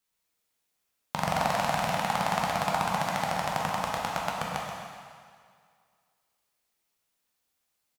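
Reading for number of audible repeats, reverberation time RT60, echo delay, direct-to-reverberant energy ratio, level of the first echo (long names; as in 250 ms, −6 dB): 1, 2.0 s, 130 ms, −3.5 dB, −7.5 dB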